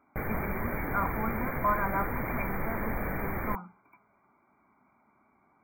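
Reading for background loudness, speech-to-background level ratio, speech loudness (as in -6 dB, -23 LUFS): -34.5 LUFS, -0.5 dB, -35.0 LUFS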